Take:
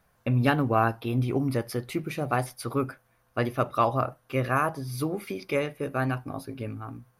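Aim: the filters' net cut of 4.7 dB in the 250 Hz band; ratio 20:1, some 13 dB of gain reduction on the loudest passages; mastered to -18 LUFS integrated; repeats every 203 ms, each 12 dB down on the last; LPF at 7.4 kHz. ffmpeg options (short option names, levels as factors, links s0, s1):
-af "lowpass=7400,equalizer=f=250:t=o:g=-6,acompressor=threshold=0.0282:ratio=20,aecho=1:1:203|406|609:0.251|0.0628|0.0157,volume=9.44"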